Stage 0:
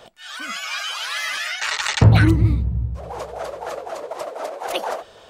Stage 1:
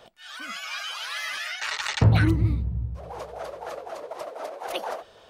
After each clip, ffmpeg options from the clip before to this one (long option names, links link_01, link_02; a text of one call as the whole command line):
ffmpeg -i in.wav -af "equalizer=frequency=7500:width=3.2:gain=-4.5,volume=-6dB" out.wav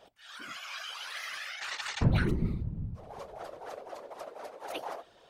ffmpeg -i in.wav -af "afftfilt=real='hypot(re,im)*cos(2*PI*random(0))':imag='hypot(re,im)*sin(2*PI*random(1))':win_size=512:overlap=0.75,volume=-1.5dB" out.wav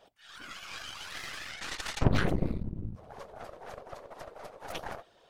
ffmpeg -i in.wav -af "aeval=exprs='0.237*(cos(1*acos(clip(val(0)/0.237,-1,1)))-cos(1*PI/2))+0.0944*(cos(3*acos(clip(val(0)/0.237,-1,1)))-cos(3*PI/2))+0.0299*(cos(5*acos(clip(val(0)/0.237,-1,1)))-cos(5*PI/2))+0.0299*(cos(8*acos(clip(val(0)/0.237,-1,1)))-cos(8*PI/2))':channel_layout=same,volume=4.5dB" out.wav